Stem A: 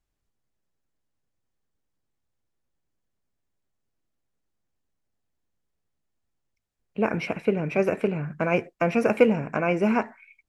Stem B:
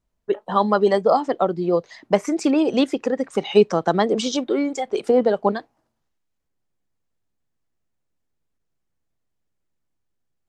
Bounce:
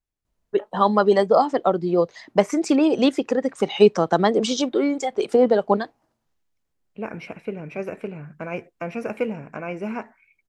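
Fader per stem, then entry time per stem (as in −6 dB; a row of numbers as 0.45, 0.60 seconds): −7.0, +0.5 decibels; 0.00, 0.25 seconds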